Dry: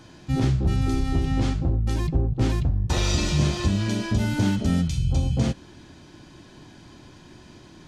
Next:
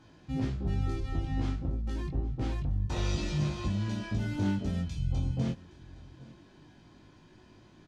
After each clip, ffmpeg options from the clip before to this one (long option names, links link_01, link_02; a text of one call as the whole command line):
ffmpeg -i in.wav -af "lowpass=frequency=3600:poles=1,flanger=delay=19:depth=3.2:speed=0.27,aecho=1:1:816:0.0891,volume=-6dB" out.wav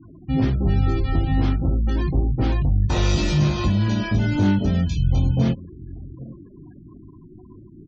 ffmpeg -i in.wav -filter_complex "[0:a]afftfilt=real='re*gte(hypot(re,im),0.00355)':imag='im*gte(hypot(re,im),0.00355)':win_size=1024:overlap=0.75,asplit=2[link_01][link_02];[link_02]alimiter=level_in=4.5dB:limit=-24dB:level=0:latency=1:release=39,volume=-4.5dB,volume=-1dB[link_03];[link_01][link_03]amix=inputs=2:normalize=0,volume=8dB" out.wav